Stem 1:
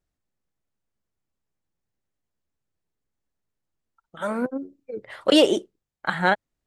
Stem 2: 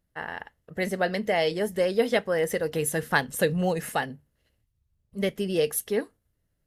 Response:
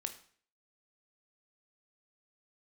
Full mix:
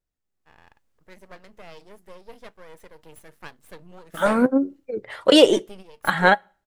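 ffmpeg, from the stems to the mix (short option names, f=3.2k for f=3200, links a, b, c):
-filter_complex "[0:a]flanger=delay=2:depth=1.7:regen=73:speed=0.56:shape=sinusoidal,volume=-1.5dB,asplit=3[a][b][c];[b]volume=-20.5dB[d];[1:a]equalizer=f=1.1k:w=2.6:g=8,aeval=exprs='max(val(0),0)':c=same,adelay=300,volume=-16dB[e];[c]apad=whole_len=307027[f];[e][f]sidechaingate=range=-14dB:threshold=-59dB:ratio=16:detection=peak[g];[2:a]atrim=start_sample=2205[h];[d][h]afir=irnorm=-1:irlink=0[i];[a][g][i]amix=inputs=3:normalize=0,dynaudnorm=f=110:g=9:m=13dB"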